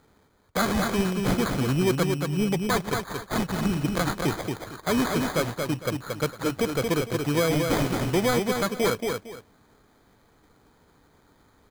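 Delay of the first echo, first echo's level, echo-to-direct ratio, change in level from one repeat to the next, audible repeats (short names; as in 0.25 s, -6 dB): 0.228 s, -4.5 dB, -4.5 dB, -12.5 dB, 2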